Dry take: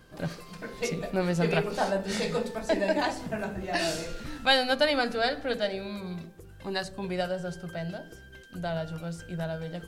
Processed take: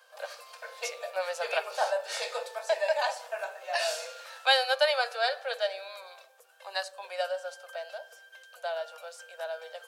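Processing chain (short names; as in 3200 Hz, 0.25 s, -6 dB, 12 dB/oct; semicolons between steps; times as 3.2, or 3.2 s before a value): steep high-pass 510 Hz 72 dB/oct; notch 2000 Hz, Q 11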